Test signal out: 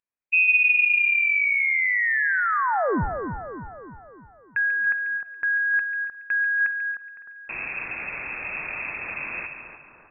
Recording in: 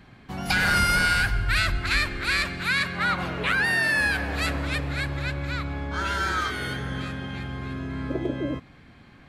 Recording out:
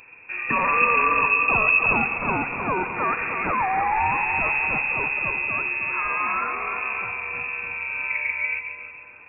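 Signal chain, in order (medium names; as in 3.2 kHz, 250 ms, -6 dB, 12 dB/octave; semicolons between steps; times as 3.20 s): high-pass 57 Hz 12 dB/octave; bass shelf 79 Hz +11.5 dB; on a send: two-band feedback delay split 940 Hz, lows 140 ms, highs 306 ms, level -7.5 dB; on the sum: spring tank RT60 1.4 s, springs 47 ms, chirp 75 ms, DRR 17.5 dB; careless resampling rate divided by 8×, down filtered, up zero stuff; frequency inversion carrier 2.6 kHz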